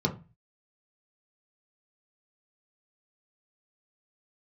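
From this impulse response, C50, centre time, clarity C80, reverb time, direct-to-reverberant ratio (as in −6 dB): 14.0 dB, 11 ms, 20.0 dB, 0.30 s, 0.0 dB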